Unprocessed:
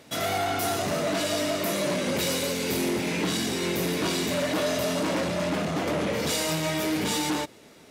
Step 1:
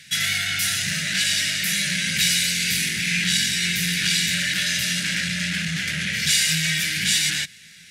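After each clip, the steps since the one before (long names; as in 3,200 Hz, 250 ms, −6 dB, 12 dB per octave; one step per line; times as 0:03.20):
drawn EQ curve 120 Hz 0 dB, 170 Hz +5 dB, 290 Hz −19 dB, 560 Hz −22 dB, 1,100 Hz −24 dB, 1,600 Hz +11 dB, 9,900 Hz +10 dB, 15,000 Hz +1 dB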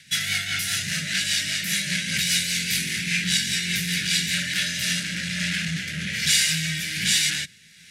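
rotating-speaker cabinet horn 5 Hz, later 1.2 Hz, at 0:04.27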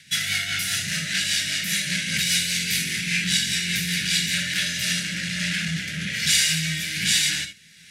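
reverb whose tail is shaped and stops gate 90 ms rising, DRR 9 dB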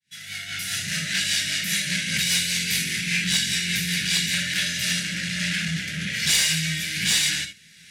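fade in at the beginning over 1.01 s
asymmetric clip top −16 dBFS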